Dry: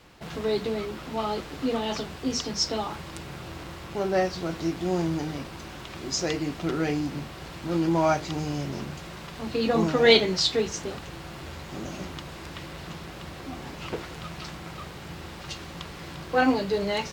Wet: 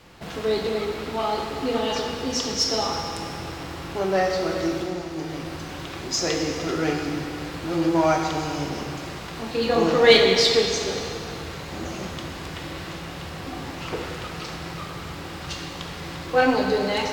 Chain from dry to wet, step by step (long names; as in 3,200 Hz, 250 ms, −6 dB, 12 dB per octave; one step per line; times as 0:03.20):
in parallel at −8 dB: asymmetric clip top −26 dBFS
on the sum: dynamic equaliser 170 Hz, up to −6 dB, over −38 dBFS, Q 1.1
0:04.81–0:06.11: downward compressor, threshold −30 dBFS, peak gain reduction 9.5 dB
convolution reverb RT60 2.6 s, pre-delay 19 ms, DRR 1 dB